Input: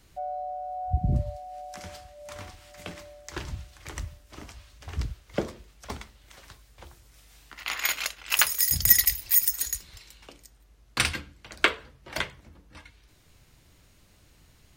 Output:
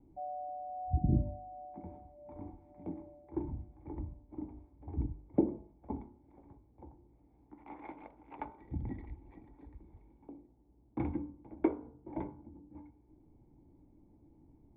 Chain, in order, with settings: cascade formant filter u; de-hum 49.96 Hz, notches 31; trim +10 dB

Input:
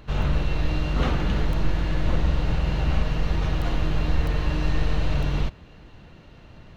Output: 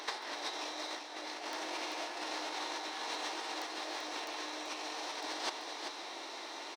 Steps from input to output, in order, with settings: steep high-pass 310 Hz 48 dB/octave; peaking EQ 3.4 kHz +4.5 dB 1.1 oct; compressor with a negative ratio -39 dBFS, ratio -0.5; formant shift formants +6 st; on a send: delay 387 ms -7 dB

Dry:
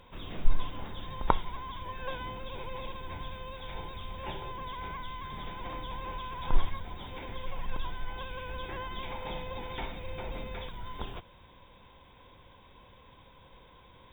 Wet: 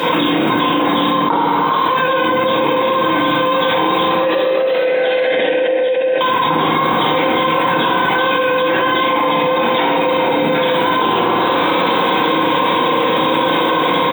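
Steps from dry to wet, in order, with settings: high-pass 200 Hz 24 dB/octave; level rider gain up to 16.5 dB; 4.03–6.21 s: vowel filter e; frequency-shifting echo 405 ms, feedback 34%, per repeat +130 Hz, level -14 dB; reverberation RT60 1.2 s, pre-delay 3 ms, DRR -6.5 dB; level flattener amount 100%; trim -3.5 dB

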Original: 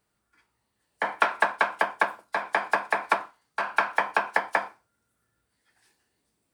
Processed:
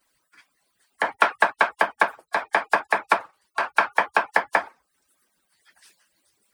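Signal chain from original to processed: harmonic-percussive separation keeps percussive; tape noise reduction on one side only encoder only; trim +4 dB

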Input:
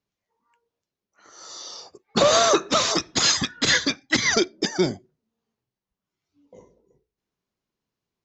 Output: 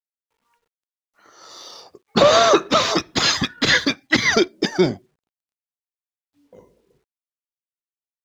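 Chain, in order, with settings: low-pass 4.3 kHz 12 dB/octave; in parallel at -5 dB: crossover distortion -41 dBFS; on the sum: bit crusher 12-bit; trim +1 dB

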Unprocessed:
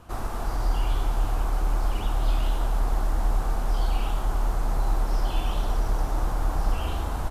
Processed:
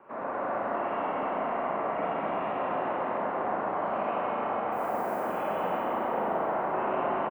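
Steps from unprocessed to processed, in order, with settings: in parallel at -2.5 dB: peak limiter -21.5 dBFS, peak gain reduction 8 dB; on the sum: mistuned SSB -120 Hz 390–2300 Hz; delay 232 ms -6.5 dB; 4.71–5.19 s: added noise violet -55 dBFS; Schroeder reverb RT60 3.9 s, combs from 33 ms, DRR -7.5 dB; trim -5.5 dB

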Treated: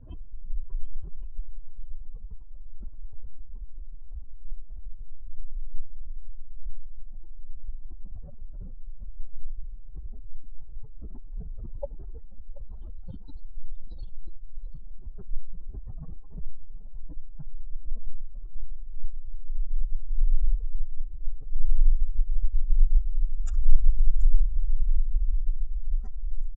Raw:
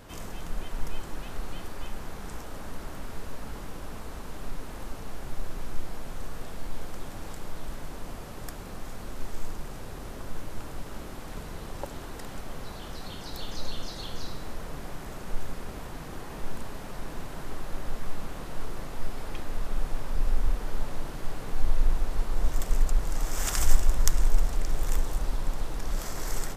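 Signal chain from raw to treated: spectral contrast enhancement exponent 3.2; delay 732 ms -19 dB; level-controlled noise filter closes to 2.7 kHz, open at -17 dBFS; trim +4.5 dB

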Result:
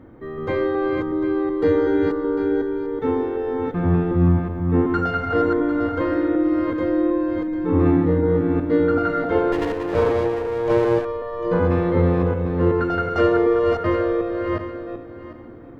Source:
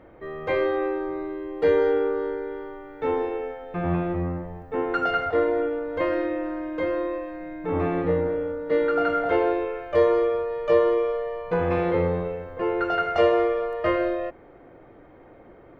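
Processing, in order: backward echo that repeats 374 ms, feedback 42%, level -3 dB; fifteen-band graphic EQ 100 Hz +10 dB, 250 Hz +10 dB, 630 Hz -7 dB, 2.5 kHz -8 dB; 9.52–11.05 s: sliding maximum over 17 samples; trim +2 dB

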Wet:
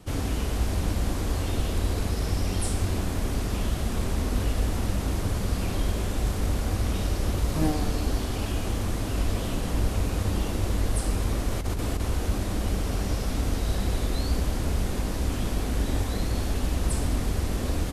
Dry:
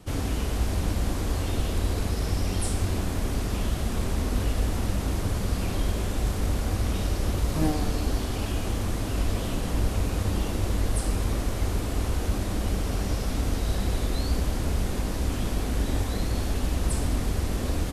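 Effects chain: 11.51–12.00 s: compressor with a negative ratio -26 dBFS, ratio -0.5

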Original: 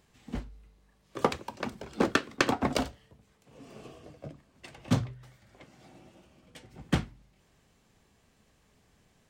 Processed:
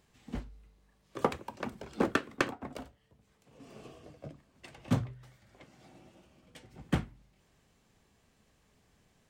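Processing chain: dynamic bell 4.9 kHz, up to -7 dB, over -52 dBFS, Q 0.88; 2.48–3.60 s: compression 1.5:1, threshold -58 dBFS, peak gain reduction 12.5 dB; trim -2.5 dB

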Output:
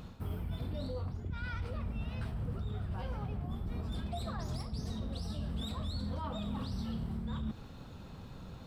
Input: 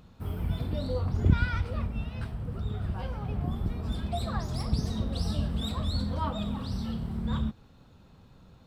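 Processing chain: reverse; compression 16:1, threshold -39 dBFS, peak gain reduction 25 dB; reverse; peak limiter -36.5 dBFS, peak gain reduction 6 dB; trim +7 dB

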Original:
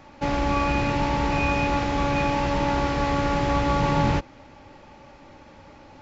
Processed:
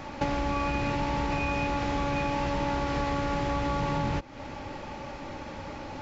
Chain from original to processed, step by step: in parallel at 0 dB: peak limiter -17 dBFS, peak gain reduction 7 dB; on the sum: compression 6:1, threshold -29 dBFS, peak gain reduction 15 dB; trim +2.5 dB

